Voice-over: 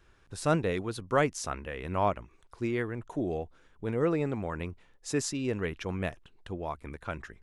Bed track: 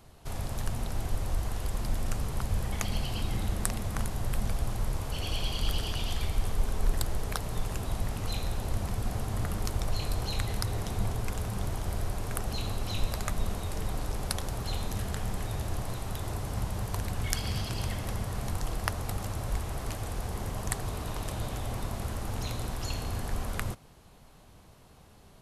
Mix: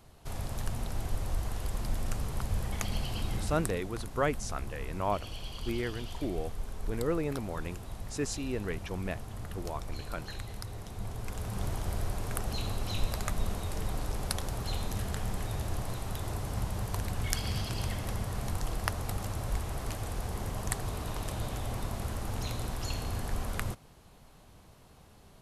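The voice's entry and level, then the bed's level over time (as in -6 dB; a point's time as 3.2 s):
3.05 s, -3.5 dB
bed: 3.35 s -2 dB
3.86 s -9.5 dB
10.92 s -9.5 dB
11.65 s -1 dB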